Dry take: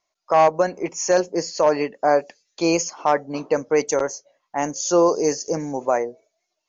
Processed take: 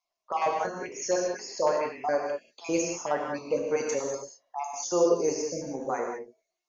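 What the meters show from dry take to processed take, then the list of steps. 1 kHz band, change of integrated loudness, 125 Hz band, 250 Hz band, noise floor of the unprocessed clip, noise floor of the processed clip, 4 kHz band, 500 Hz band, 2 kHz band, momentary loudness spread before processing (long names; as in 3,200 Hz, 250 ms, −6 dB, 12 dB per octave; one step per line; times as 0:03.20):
−9.0 dB, −8.0 dB, −10.0 dB, −9.0 dB, −78 dBFS, below −85 dBFS, −8.5 dB, −7.5 dB, −8.0 dB, 9 LU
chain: time-frequency cells dropped at random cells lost 34%
reverb whose tail is shaped and stops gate 220 ms flat, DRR −0.5 dB
level −9 dB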